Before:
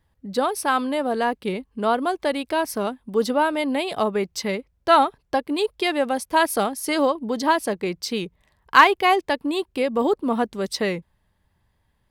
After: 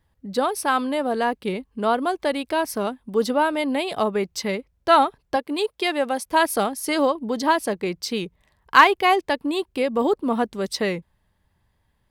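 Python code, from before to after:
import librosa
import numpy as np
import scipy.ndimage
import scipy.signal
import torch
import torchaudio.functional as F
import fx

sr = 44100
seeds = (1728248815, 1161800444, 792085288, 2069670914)

y = fx.highpass(x, sr, hz=230.0, slope=6, at=(5.36, 6.26))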